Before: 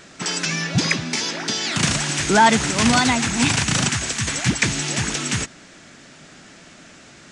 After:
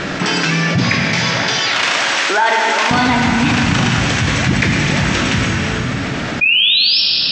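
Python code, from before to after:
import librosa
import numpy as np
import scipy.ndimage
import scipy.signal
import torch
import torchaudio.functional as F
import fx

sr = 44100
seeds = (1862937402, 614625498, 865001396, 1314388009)

y = fx.bessel_highpass(x, sr, hz=600.0, order=4, at=(0.8, 2.91))
y = fx.spec_paint(y, sr, seeds[0], shape='rise', start_s=6.41, length_s=0.6, low_hz=2400.0, high_hz=5500.0, level_db=-11.0)
y = fx.air_absorb(y, sr, metres=180.0)
y = fx.rev_plate(y, sr, seeds[1], rt60_s=2.3, hf_ratio=0.85, predelay_ms=0, drr_db=0.5)
y = fx.env_flatten(y, sr, amount_pct=70)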